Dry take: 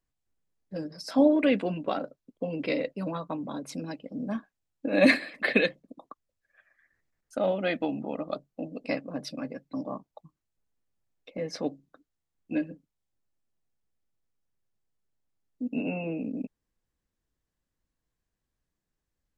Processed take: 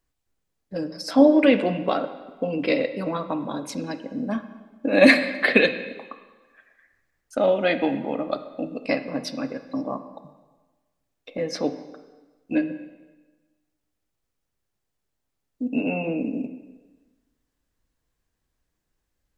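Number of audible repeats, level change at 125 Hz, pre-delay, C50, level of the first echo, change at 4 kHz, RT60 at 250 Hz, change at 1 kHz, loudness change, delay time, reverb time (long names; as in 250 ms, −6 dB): no echo audible, +3.5 dB, 5 ms, 11.5 dB, no echo audible, +7.0 dB, 1.3 s, +7.0 dB, +6.5 dB, no echo audible, 1.2 s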